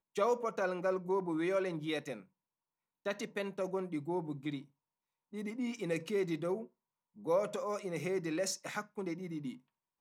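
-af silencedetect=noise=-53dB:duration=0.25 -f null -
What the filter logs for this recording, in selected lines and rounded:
silence_start: 2.23
silence_end: 3.05 | silence_duration: 0.82
silence_start: 4.64
silence_end: 5.33 | silence_duration: 0.68
silence_start: 6.67
silence_end: 7.17 | silence_duration: 0.50
silence_start: 9.58
silence_end: 10.00 | silence_duration: 0.43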